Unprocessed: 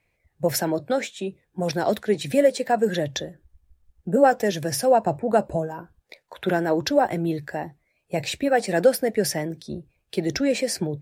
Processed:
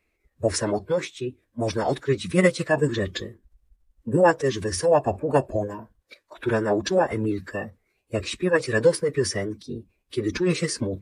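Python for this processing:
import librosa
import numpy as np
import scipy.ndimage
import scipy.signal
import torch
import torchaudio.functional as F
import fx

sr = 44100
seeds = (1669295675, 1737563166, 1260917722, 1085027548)

y = fx.pitch_keep_formants(x, sr, semitones=-7.5)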